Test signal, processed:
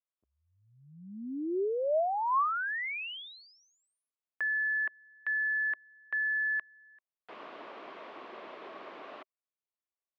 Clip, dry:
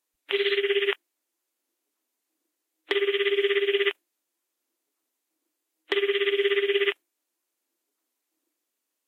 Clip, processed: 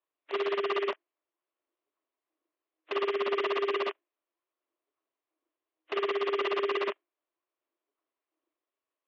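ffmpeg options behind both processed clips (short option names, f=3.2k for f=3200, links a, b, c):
-filter_complex "[0:a]acrossover=split=2500[a][b];[b]acompressor=threshold=-39dB:ratio=4:attack=1:release=60[c];[a][c]amix=inputs=2:normalize=0,aeval=exprs='(mod(7.94*val(0)+1,2)-1)/7.94':c=same,highpass=f=270:w=0.5412,highpass=f=270:w=1.3066,equalizer=f=390:t=q:w=4:g=5,equalizer=f=630:t=q:w=4:g=8,equalizer=f=1.1k:t=q:w=4:g=9,lowpass=f=3.2k:w=0.5412,lowpass=f=3.2k:w=1.3066,volume=-7.5dB"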